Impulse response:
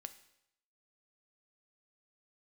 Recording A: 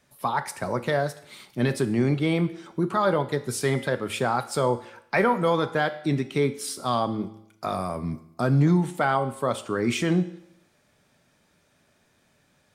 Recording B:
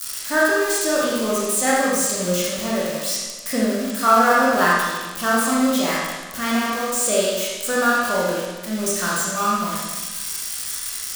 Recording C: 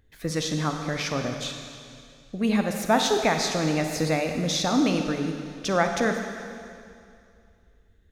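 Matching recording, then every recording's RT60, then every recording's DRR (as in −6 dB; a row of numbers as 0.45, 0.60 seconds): A; 0.80, 1.3, 2.4 seconds; 9.5, −6.5, 4.0 decibels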